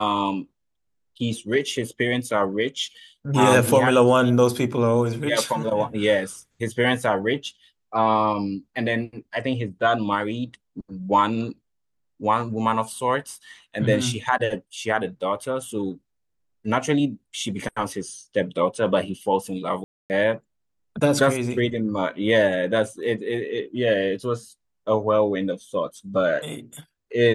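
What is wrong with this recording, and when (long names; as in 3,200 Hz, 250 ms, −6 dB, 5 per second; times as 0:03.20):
0:19.84–0:20.10: drop-out 259 ms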